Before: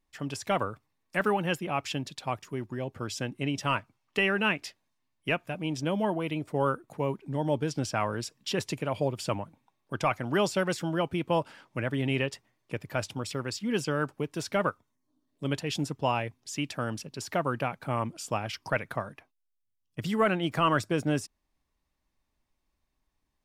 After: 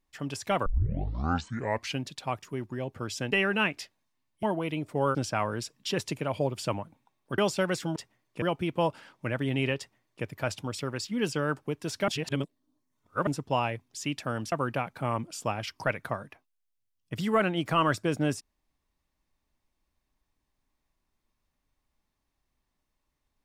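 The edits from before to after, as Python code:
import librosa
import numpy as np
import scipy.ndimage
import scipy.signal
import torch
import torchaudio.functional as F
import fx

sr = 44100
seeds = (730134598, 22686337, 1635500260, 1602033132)

y = fx.edit(x, sr, fx.tape_start(start_s=0.66, length_s=1.38),
    fx.cut(start_s=3.32, length_s=0.85),
    fx.cut(start_s=5.28, length_s=0.74),
    fx.cut(start_s=6.74, length_s=1.02),
    fx.cut(start_s=9.99, length_s=0.37),
    fx.duplicate(start_s=12.3, length_s=0.46, to_s=10.94),
    fx.reverse_span(start_s=14.6, length_s=1.19),
    fx.cut(start_s=17.04, length_s=0.34), tone=tone)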